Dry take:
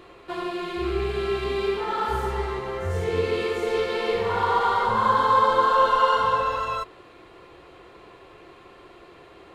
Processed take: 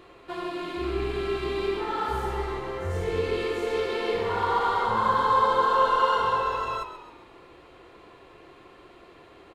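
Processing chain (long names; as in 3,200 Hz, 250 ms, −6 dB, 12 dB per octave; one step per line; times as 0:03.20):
echo with shifted repeats 133 ms, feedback 48%, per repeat −44 Hz, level −11 dB
level −3 dB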